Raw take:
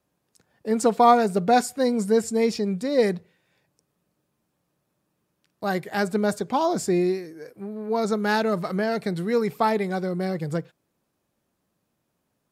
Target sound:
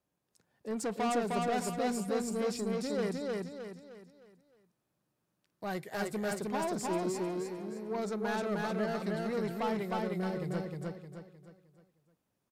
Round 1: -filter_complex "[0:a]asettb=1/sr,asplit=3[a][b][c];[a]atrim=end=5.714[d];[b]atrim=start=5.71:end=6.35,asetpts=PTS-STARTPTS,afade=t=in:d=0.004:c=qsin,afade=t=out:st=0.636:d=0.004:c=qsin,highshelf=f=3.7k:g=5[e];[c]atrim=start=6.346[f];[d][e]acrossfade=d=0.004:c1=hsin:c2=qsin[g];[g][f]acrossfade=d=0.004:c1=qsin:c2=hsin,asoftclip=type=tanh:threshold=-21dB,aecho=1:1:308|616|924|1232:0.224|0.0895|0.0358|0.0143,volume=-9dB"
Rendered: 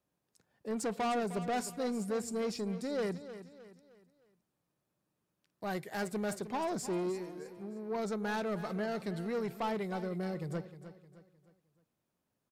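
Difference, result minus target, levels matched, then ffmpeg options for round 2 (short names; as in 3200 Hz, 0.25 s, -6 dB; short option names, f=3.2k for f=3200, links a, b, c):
echo-to-direct -11 dB
-filter_complex "[0:a]asettb=1/sr,asplit=3[a][b][c];[a]atrim=end=5.714[d];[b]atrim=start=5.71:end=6.35,asetpts=PTS-STARTPTS,afade=t=in:d=0.004:c=qsin,afade=t=out:st=0.636:d=0.004:c=qsin,highshelf=f=3.7k:g=5[e];[c]atrim=start=6.346[f];[d][e]acrossfade=d=0.004:c1=hsin:c2=qsin[g];[g][f]acrossfade=d=0.004:c1=qsin:c2=hsin,asoftclip=type=tanh:threshold=-21dB,aecho=1:1:308|616|924|1232|1540:0.794|0.318|0.127|0.0508|0.0203,volume=-9dB"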